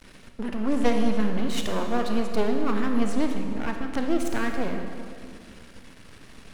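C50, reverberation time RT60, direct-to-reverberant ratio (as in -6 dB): 4.5 dB, 2.3 s, 3.5 dB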